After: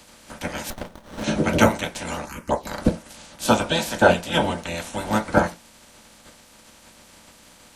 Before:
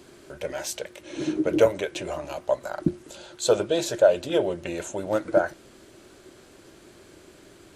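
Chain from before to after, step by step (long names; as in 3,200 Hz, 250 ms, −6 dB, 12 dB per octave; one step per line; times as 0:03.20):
ceiling on every frequency bin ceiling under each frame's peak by 25 dB
0:02.25–0:02.67: phaser swept by the level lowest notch 400 Hz, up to 4,400 Hz, full sweep at −18.5 dBFS
on a send at −3 dB: convolution reverb RT60 0.20 s, pre-delay 3 ms
0:00.70–0:01.24: on the sum: windowed peak hold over 17 samples
level −1 dB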